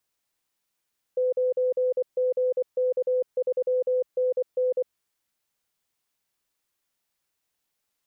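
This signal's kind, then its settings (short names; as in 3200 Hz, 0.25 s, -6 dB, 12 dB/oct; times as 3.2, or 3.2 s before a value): Morse "9GK3NN" 24 wpm 506 Hz -20.5 dBFS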